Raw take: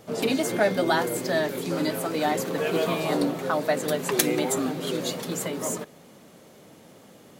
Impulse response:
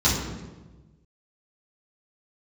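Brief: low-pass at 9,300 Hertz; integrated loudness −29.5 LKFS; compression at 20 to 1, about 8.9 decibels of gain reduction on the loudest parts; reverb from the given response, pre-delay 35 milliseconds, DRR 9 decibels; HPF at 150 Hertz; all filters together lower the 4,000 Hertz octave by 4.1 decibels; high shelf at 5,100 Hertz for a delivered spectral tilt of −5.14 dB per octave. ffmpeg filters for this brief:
-filter_complex "[0:a]highpass=150,lowpass=9300,equalizer=frequency=4000:width_type=o:gain=-3.5,highshelf=frequency=5100:gain=-3.5,acompressor=threshold=-27dB:ratio=20,asplit=2[link_01][link_02];[1:a]atrim=start_sample=2205,adelay=35[link_03];[link_02][link_03]afir=irnorm=-1:irlink=0,volume=-25dB[link_04];[link_01][link_04]amix=inputs=2:normalize=0,volume=1.5dB"

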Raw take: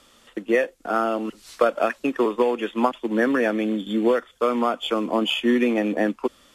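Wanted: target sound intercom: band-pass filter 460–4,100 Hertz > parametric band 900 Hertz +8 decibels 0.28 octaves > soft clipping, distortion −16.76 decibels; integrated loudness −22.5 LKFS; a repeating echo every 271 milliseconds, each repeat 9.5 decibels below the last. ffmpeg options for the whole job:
ffmpeg -i in.wav -af "highpass=460,lowpass=4100,equalizer=frequency=900:width_type=o:width=0.28:gain=8,aecho=1:1:271|542|813|1084:0.335|0.111|0.0365|0.012,asoftclip=threshold=-12.5dB,volume=3.5dB" out.wav

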